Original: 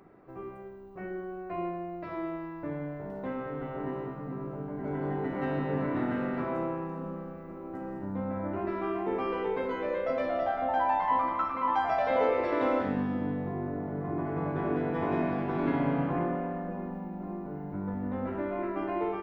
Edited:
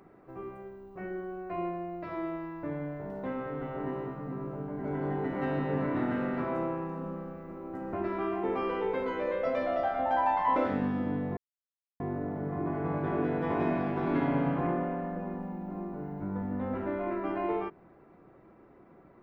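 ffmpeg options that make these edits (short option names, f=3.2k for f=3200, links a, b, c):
-filter_complex "[0:a]asplit=4[a][b][c][d];[a]atrim=end=7.932[e];[b]atrim=start=8.558:end=11.192[f];[c]atrim=start=12.708:end=13.52,asetpts=PTS-STARTPTS,afade=t=out:st=0.808:d=0.004:c=hsin,apad=pad_dur=0.63[g];[d]atrim=start=13.52,asetpts=PTS-STARTPTS,afade=t=in:d=0.004:c=hsin[h];[e][f]acrossfade=d=0.004:c1=hsin:c2=hsin[i];[g][h]concat=n=2:v=0:a=1[j];[i][j]acrossfade=d=0.004:c1=hsin:c2=hsin"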